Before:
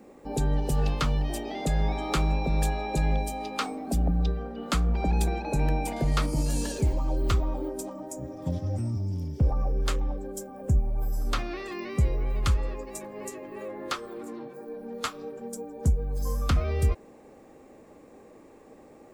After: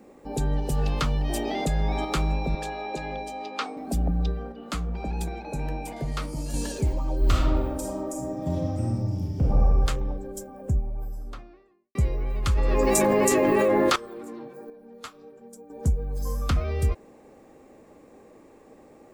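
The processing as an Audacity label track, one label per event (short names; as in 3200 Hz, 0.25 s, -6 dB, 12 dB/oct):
0.800000	2.050000	fast leveller amount 50%
2.550000	3.770000	three-band isolator lows -17 dB, under 240 Hz, highs -16 dB, over 6400 Hz
4.520000	6.540000	flange 1.4 Hz, delay 5.5 ms, depth 7.3 ms, regen +69%
7.180000	9.830000	reverb throw, RT60 1.2 s, DRR -2 dB
10.330000	11.950000	studio fade out
12.530000	13.960000	fast leveller amount 100%
14.700000	15.700000	gain -9 dB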